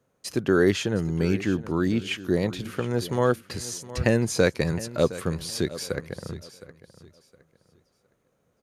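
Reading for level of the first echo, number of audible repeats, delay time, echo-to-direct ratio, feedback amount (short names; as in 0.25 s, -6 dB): -16.0 dB, 2, 0.714 s, -15.5 dB, 26%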